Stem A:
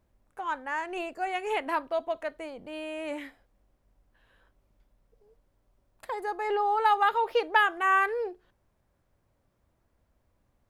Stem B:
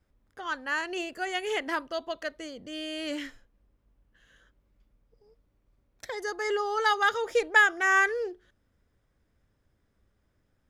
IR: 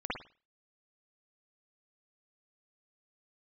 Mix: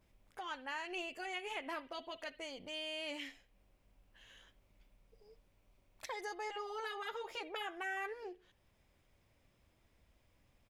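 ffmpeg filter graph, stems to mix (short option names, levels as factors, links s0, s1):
-filter_complex "[0:a]volume=0.841,asplit=2[s0][s1];[1:a]highshelf=f=1700:t=q:w=3:g=11.5,acompressor=threshold=0.1:ratio=6,adelay=11,volume=0.299,asplit=2[s2][s3];[s3]volume=0.0891[s4];[s1]apad=whole_len=472073[s5];[s2][s5]sidechaincompress=threshold=0.0282:ratio=8:attack=5.9:release=725[s6];[2:a]atrim=start_sample=2205[s7];[s4][s7]afir=irnorm=-1:irlink=0[s8];[s0][s6][s8]amix=inputs=3:normalize=0,afftfilt=real='re*lt(hypot(re,im),0.316)':imag='im*lt(hypot(re,im),0.316)':win_size=1024:overlap=0.75,acompressor=threshold=0.00158:ratio=1.5"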